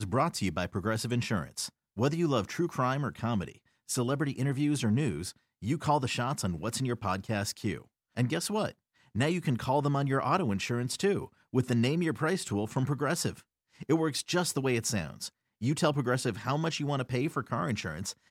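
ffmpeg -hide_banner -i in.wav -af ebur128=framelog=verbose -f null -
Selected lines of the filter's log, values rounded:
Integrated loudness:
  I:         -31.0 LUFS
  Threshold: -41.2 LUFS
Loudness range:
  LRA:         2.2 LU
  Threshold: -51.1 LUFS
  LRA low:   -32.1 LUFS
  LRA high:  -29.9 LUFS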